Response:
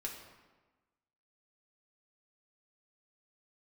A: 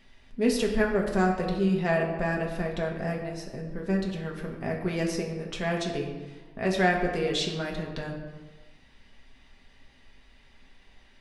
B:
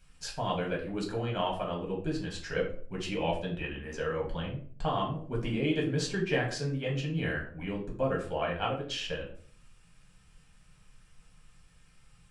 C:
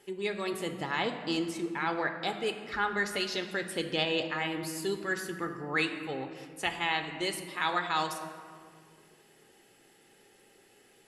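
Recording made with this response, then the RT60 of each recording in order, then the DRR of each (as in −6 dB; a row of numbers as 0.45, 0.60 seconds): A; 1.2, 0.50, 2.0 seconds; −1.0, −3.0, 5.0 decibels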